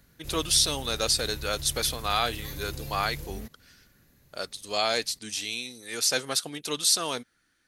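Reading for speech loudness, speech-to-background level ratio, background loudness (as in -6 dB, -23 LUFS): -27.0 LUFS, 13.5 dB, -40.5 LUFS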